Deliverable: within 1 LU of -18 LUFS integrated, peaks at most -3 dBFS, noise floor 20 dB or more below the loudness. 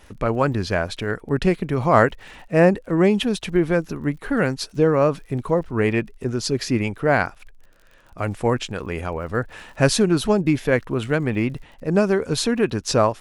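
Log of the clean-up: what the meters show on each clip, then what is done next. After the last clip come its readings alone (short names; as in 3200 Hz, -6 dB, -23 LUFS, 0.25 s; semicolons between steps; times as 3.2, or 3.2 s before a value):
ticks 50/s; loudness -21.5 LUFS; peak -1.5 dBFS; loudness target -18.0 LUFS
-> de-click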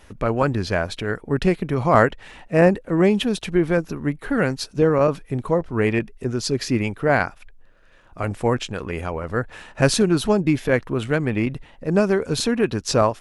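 ticks 0/s; loudness -21.5 LUFS; peak -1.5 dBFS; loudness target -18.0 LUFS
-> gain +3.5 dB; limiter -3 dBFS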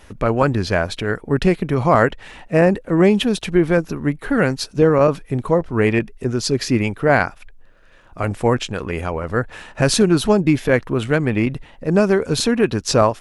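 loudness -18.5 LUFS; peak -3.0 dBFS; noise floor -47 dBFS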